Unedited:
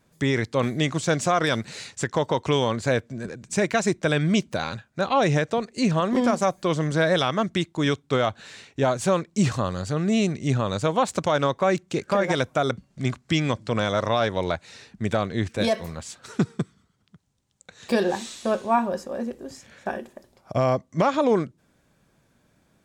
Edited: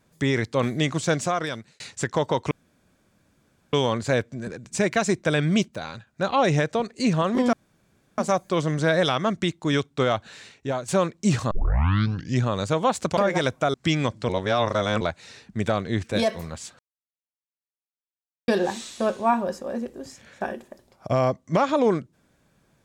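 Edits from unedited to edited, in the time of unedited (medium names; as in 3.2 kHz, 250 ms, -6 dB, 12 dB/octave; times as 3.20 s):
1.10–1.80 s: fade out
2.51 s: insert room tone 1.22 s
4.46–4.85 s: gain -6 dB
6.31 s: insert room tone 0.65 s
8.40–9.01 s: fade out, to -8.5 dB
9.64 s: tape start 0.93 s
11.30–12.11 s: delete
12.68–13.19 s: delete
13.74–14.46 s: reverse
16.24–17.93 s: mute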